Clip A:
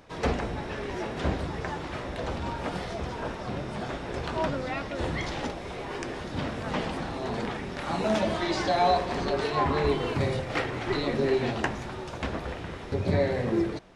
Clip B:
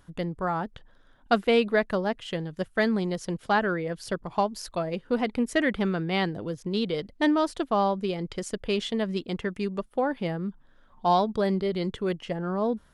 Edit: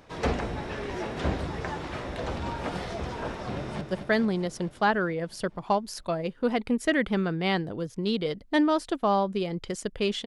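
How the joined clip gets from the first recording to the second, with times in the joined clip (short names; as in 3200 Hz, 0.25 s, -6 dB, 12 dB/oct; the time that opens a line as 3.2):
clip A
3.54–3.81 echo throw 0.22 s, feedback 70%, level -7 dB
3.81 switch to clip B from 2.49 s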